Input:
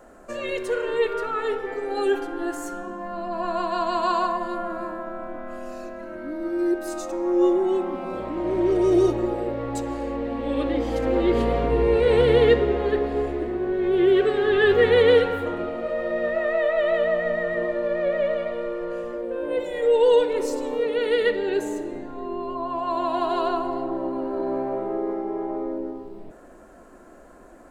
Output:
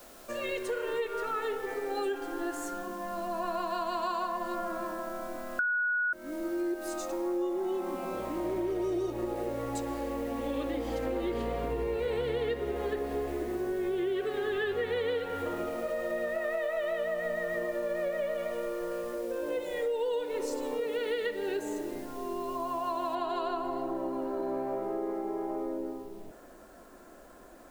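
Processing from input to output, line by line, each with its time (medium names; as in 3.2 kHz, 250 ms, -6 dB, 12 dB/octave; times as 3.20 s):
5.59–6.13 s: bleep 1.46 kHz -11.5 dBFS
23.15 s: noise floor step -52 dB -63 dB
whole clip: bass shelf 490 Hz -3 dB; compression, threshold -26 dBFS; trim -3 dB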